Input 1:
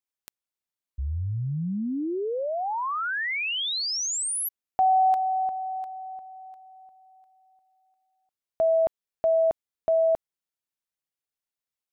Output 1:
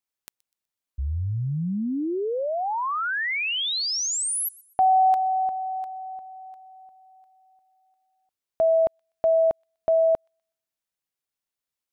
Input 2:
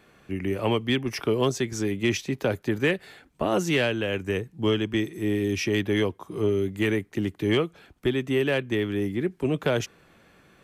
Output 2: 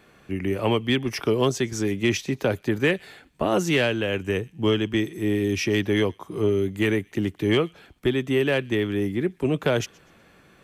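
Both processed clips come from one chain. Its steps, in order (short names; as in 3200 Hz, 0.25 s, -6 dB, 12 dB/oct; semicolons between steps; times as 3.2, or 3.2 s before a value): thin delay 0.124 s, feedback 35%, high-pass 2900 Hz, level -23 dB; gain +2 dB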